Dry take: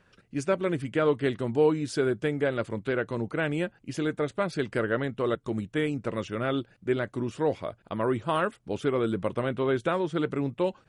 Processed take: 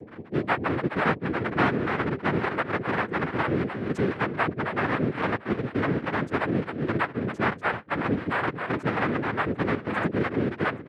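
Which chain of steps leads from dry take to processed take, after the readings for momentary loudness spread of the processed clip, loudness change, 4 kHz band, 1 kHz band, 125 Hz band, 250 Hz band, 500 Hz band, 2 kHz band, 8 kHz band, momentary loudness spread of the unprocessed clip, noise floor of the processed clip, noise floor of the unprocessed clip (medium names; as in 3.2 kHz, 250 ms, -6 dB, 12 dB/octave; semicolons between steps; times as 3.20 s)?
3 LU, +2.0 dB, +0.5 dB, +6.0 dB, +3.0 dB, +2.0 dB, -2.5 dB, +7.0 dB, under -10 dB, 6 LU, -45 dBFS, -64 dBFS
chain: tracing distortion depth 0.023 ms; high-pass 160 Hz 12 dB/octave; high-order bell 2.7 kHz -9 dB 2.3 oct; band-stop 3.9 kHz; comb 6.6 ms, depth 79%; in parallel at +1 dB: compressor with a negative ratio -28 dBFS, ratio -0.5; on the sum: echo from a far wall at 45 m, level -9 dB; loudest bins only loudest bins 1; on a send: delay 743 ms -17 dB; on the sum: noise-vocoded speech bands 3; three bands compressed up and down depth 70%; trim +3 dB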